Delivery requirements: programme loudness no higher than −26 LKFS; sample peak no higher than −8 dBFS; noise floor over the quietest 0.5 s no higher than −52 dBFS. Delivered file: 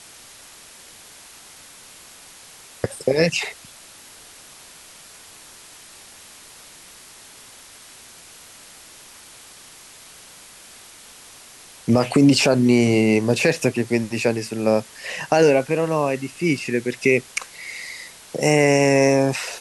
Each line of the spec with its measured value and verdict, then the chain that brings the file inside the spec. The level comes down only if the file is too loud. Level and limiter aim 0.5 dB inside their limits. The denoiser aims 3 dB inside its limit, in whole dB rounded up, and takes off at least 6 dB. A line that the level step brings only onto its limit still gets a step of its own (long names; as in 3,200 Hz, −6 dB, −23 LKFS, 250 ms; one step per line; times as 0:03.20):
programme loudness −19.5 LKFS: out of spec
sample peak −5.5 dBFS: out of spec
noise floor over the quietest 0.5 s −45 dBFS: out of spec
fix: broadband denoise 6 dB, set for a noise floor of −45 dBFS
level −7 dB